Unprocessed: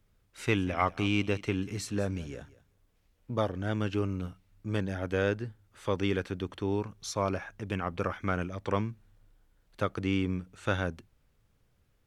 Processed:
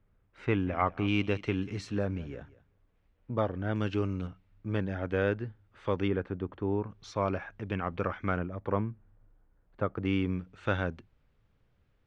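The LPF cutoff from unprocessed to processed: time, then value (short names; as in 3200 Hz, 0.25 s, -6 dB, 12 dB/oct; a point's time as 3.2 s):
1900 Hz
from 1.08 s 3900 Hz
from 1.98 s 2400 Hz
from 3.76 s 5100 Hz
from 4.27 s 2800 Hz
from 6.08 s 1400 Hz
from 6.9 s 3000 Hz
from 8.39 s 1400 Hz
from 10.05 s 3400 Hz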